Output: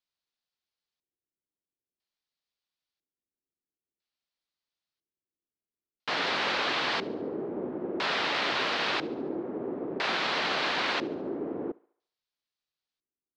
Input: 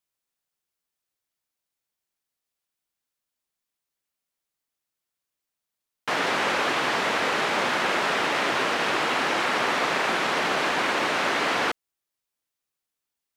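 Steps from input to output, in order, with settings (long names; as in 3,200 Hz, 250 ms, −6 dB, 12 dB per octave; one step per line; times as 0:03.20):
auto-filter low-pass square 0.5 Hz 360–4,300 Hz
feedback echo with a high-pass in the loop 71 ms, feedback 54%, level −21.5 dB
level −6 dB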